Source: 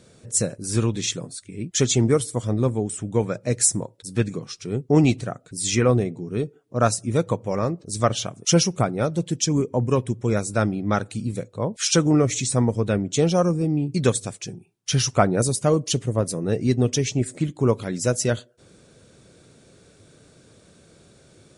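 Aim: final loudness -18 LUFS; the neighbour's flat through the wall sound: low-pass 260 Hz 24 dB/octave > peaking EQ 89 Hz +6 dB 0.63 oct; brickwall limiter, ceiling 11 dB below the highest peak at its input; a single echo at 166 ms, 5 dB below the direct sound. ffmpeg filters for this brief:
-af "alimiter=limit=0.211:level=0:latency=1,lowpass=f=260:w=0.5412,lowpass=f=260:w=1.3066,equalizer=f=89:t=o:w=0.63:g=6,aecho=1:1:166:0.562,volume=2.66"

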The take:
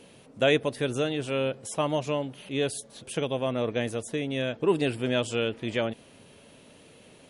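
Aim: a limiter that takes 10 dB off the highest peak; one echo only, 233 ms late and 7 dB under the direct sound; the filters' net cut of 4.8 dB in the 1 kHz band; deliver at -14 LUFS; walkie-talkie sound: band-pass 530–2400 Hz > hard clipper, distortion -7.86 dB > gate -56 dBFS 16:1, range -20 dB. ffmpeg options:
-af "equalizer=f=1000:t=o:g=-5.5,alimiter=limit=0.0794:level=0:latency=1,highpass=530,lowpass=2400,aecho=1:1:233:0.447,asoftclip=type=hard:threshold=0.0141,agate=range=0.1:threshold=0.00158:ratio=16,volume=23.7"

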